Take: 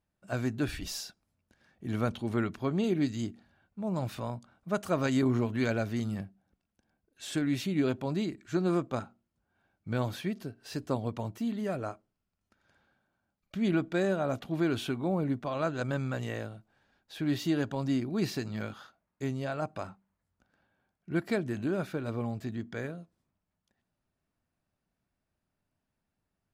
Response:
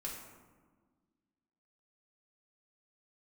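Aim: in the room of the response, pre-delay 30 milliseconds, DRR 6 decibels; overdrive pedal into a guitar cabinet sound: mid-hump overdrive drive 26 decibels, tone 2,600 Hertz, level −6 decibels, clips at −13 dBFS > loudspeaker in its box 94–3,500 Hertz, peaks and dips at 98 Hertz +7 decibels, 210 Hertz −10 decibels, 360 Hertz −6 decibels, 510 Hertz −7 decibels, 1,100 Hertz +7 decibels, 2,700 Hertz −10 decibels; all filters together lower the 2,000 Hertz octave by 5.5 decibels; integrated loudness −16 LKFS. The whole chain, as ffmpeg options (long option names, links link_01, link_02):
-filter_complex "[0:a]equalizer=frequency=2000:width_type=o:gain=-7.5,asplit=2[link_01][link_02];[1:a]atrim=start_sample=2205,adelay=30[link_03];[link_02][link_03]afir=irnorm=-1:irlink=0,volume=-5.5dB[link_04];[link_01][link_04]amix=inputs=2:normalize=0,asplit=2[link_05][link_06];[link_06]highpass=frequency=720:poles=1,volume=26dB,asoftclip=type=tanh:threshold=-13dB[link_07];[link_05][link_07]amix=inputs=2:normalize=0,lowpass=frequency=2600:poles=1,volume=-6dB,highpass=94,equalizer=frequency=98:width_type=q:width=4:gain=7,equalizer=frequency=210:width_type=q:width=4:gain=-10,equalizer=frequency=360:width_type=q:width=4:gain=-6,equalizer=frequency=510:width_type=q:width=4:gain=-7,equalizer=frequency=1100:width_type=q:width=4:gain=7,equalizer=frequency=2700:width_type=q:width=4:gain=-10,lowpass=frequency=3500:width=0.5412,lowpass=frequency=3500:width=1.3066,volume=11dB"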